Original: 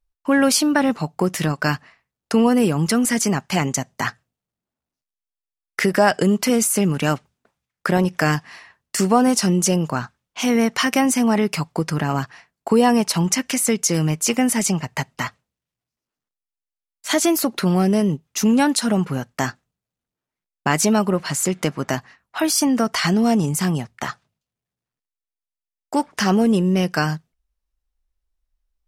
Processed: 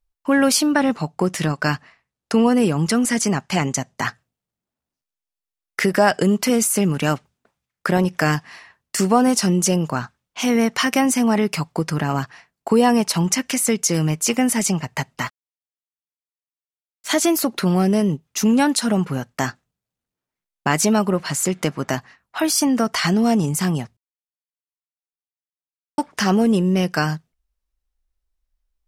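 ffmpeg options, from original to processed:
-filter_complex "[0:a]asettb=1/sr,asplit=3[a][b][c];[a]atrim=end=0.664[d];[b]atrim=start=0.66:end=4.05,asetpts=PTS-STARTPTS,afade=t=in:d=0.004:c=qsin,afade=t=out:st=3.386:d=0.004:c=qsin,lowpass=11k[e];[c]atrim=start=4.046[f];[d][e]acrossfade=d=0.004:c1=hsin:c2=qsin[g];[g][f]acrossfade=d=0.004:c1=qsin:c2=hsin,asettb=1/sr,asplit=3[h][i][j];[h]atrim=end=15.254[k];[i]atrim=start=15.25:end=17.09,asetpts=PTS-STARTPTS,afade=t=in:d=0.004:c=qsin,afade=t=out:st=1.836:d=0.004:c=qsin,aeval=exprs='sgn(val(0))*max(abs(val(0))-0.00562,0)':c=same[l];[j]atrim=start=17.086[m];[k][l]acrossfade=d=0.004:c1=hsin:c2=qsin[n];[n][m]acrossfade=d=0.004:c1=qsin:c2=hsin,asplit=3[o][p][q];[o]atrim=end=23.97,asetpts=PTS-STARTPTS,afade=t=out:st=23.966:d=0.004:c=hsin[r];[p]atrim=start=23.97:end=25.98,asetpts=PTS-STARTPTS,volume=0[s];[q]atrim=start=25.98,asetpts=PTS-STARTPTS,afade=t=in:d=0.004:c=hsin[t];[r][s][t]concat=n=3:v=0:a=1"

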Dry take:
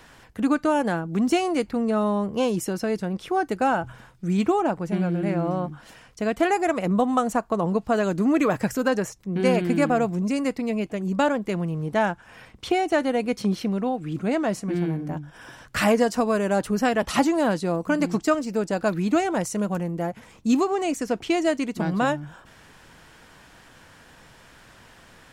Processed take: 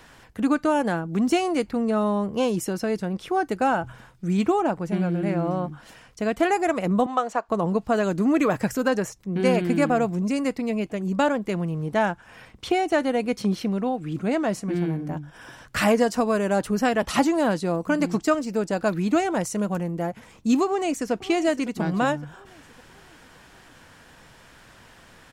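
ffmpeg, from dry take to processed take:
-filter_complex "[0:a]asettb=1/sr,asplit=3[a][b][c];[a]atrim=end=7.064[d];[b]atrim=start=7.06:end=7.49,asetpts=PTS-STARTPTS,afade=t=in:d=0.004:c=qsin,afade=t=out:st=0.426:d=0.004:c=qsin,acrossover=split=360 6200:gain=0.112 1 0.126[e][f][g];[e][f][g]amix=inputs=3:normalize=0[h];[c]atrim=start=7.486[i];[d][h]acrossfade=d=0.004:c1=hsin:c2=qsin[j];[j][i]acrossfade=d=0.004:c1=qsin:c2=hsin,asplit=2[k][l];[l]afade=t=in:st=20.65:d=0.01,afade=t=out:st=21.12:d=0.01,aecho=0:1:560|1120|1680|2240|2800:0.177828|0.088914|0.044457|0.0222285|0.0111142[m];[k][m]amix=inputs=2:normalize=0"

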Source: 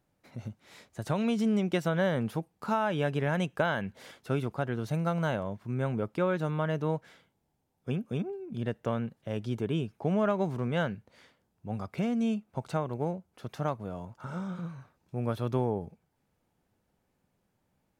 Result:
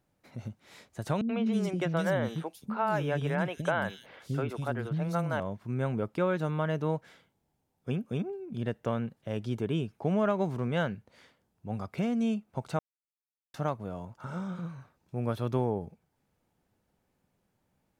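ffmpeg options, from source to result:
-filter_complex "[0:a]asettb=1/sr,asplit=3[a][b][c];[a]atrim=end=1.214[d];[b]atrim=start=1.21:end=5.4,asetpts=PTS-STARTPTS,afade=t=in:d=0.004:c=qsin,afade=t=out:st=4.186:d=0.004:c=qsin,acrossover=split=310|3300[e][f][g];[f]adelay=80[h];[g]adelay=250[i];[e][h][i]amix=inputs=3:normalize=0,atrim=end_sample=184779[j];[c]atrim=start=5.396[k];[d][j]acrossfade=d=0.004:c1=hsin:c2=qsin[l];[l][k]acrossfade=d=0.004:c1=qsin:c2=hsin,asplit=3[m][n][o];[m]atrim=end=12.79,asetpts=PTS-STARTPTS,afade=t=out:st=12.786:d=0.004:c=hsin[p];[n]atrim=start=12.79:end=13.54,asetpts=PTS-STARTPTS,volume=0[q];[o]atrim=start=13.54,asetpts=PTS-STARTPTS,afade=t=in:d=0.004:c=hsin[r];[p][q][r]concat=n=3:v=0:a=1"

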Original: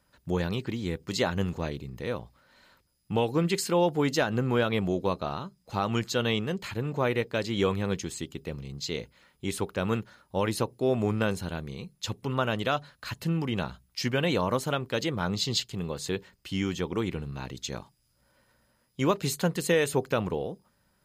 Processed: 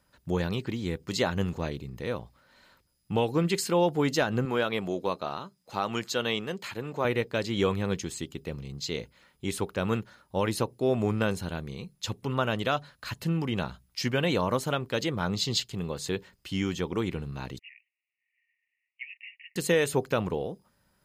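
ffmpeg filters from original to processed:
-filter_complex "[0:a]asettb=1/sr,asplit=3[a][b][c];[a]atrim=end=4.454[d];[b]atrim=start=4.45:end=7.05,asetpts=PTS-STARTPTS,afade=t=in:d=0.004:c=qsin,afade=t=out:st=2.596:d=0.004:c=qsin,highpass=f=320:p=1[e];[c]atrim=start=7.046[f];[d][e]acrossfade=d=0.004:c1=hsin:c2=qsin[g];[g][f]acrossfade=d=0.004:c1=qsin:c2=hsin,asettb=1/sr,asplit=3[h][i][j];[h]atrim=end=17.594[k];[i]atrim=start=17.59:end=19.56,asetpts=PTS-STARTPTS,afade=t=in:d=0.004:c=qsin,afade=t=out:st=1.966:d=0.004:c=qsin,asuperpass=centerf=2300:order=20:qfactor=2.2[l];[j]atrim=start=19.556[m];[k][l]acrossfade=d=0.004:c1=hsin:c2=qsin[n];[n][m]acrossfade=d=0.004:c1=qsin:c2=hsin"

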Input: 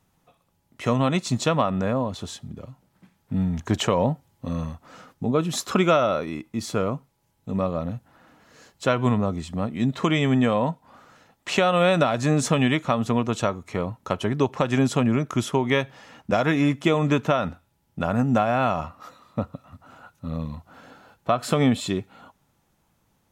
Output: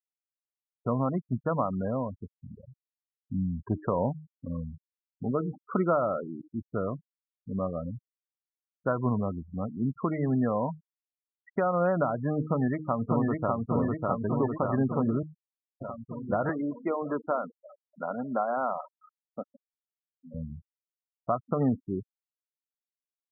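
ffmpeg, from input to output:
-filter_complex "[0:a]asplit=2[a][b];[b]afade=t=in:st=12.41:d=0.01,afade=t=out:st=13.58:d=0.01,aecho=0:1:600|1200|1800|2400|3000|3600|4200|4800|5400|6000|6600|7200:0.841395|0.631046|0.473285|0.354964|0.266223|0.199667|0.14975|0.112313|0.0842345|0.0631759|0.0473819|0.0355364[c];[a][c]amix=inputs=2:normalize=0,asettb=1/sr,asplit=3[d][e][f];[d]atrim=end=16.494[g];[e]atrim=start=16.49:end=20.34,asetpts=PTS-STARTPTS,afade=t=in:d=0.004:c=qsin,afade=t=out:st=3.846:d=0.004:c=qsin,highpass=320,lowpass=5.8k[h];[f]atrim=start=20.336[i];[g][h]acrossfade=d=0.004:c1=hsin:c2=qsin[j];[j][i]acrossfade=d=0.004:c1=qsin:c2=hsin,asplit=3[k][l][m];[k]atrim=end=15.23,asetpts=PTS-STARTPTS,afade=t=out:st=15.226:d=0.004:c=hsin[n];[l]atrim=start=15.23:end=15.81,asetpts=PTS-STARTPTS,volume=0[o];[m]atrim=start=15.81,asetpts=PTS-STARTPTS,afade=t=in:d=0.004:c=hsin[p];[n][o][p]concat=n=3:v=0:a=1,lowpass=f=1.7k:w=0.5412,lowpass=f=1.7k:w=1.3066,bandreject=f=154.4:t=h:w=4,bandreject=f=308.8:t=h:w=4,bandreject=f=463.2:t=h:w=4,afftfilt=real='re*gte(hypot(re,im),0.0708)':imag='im*gte(hypot(re,im),0.0708)':win_size=1024:overlap=0.75,volume=-6dB"

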